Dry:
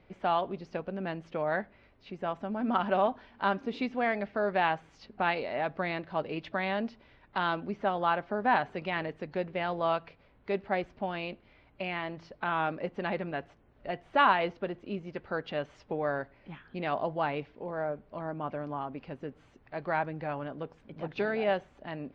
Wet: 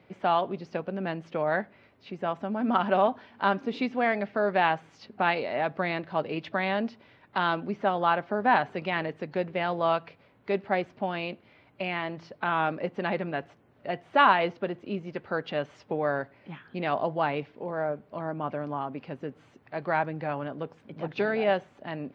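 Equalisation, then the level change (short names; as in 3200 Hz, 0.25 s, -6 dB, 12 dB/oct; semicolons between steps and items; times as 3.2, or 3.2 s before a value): HPF 94 Hz 24 dB/oct; +3.5 dB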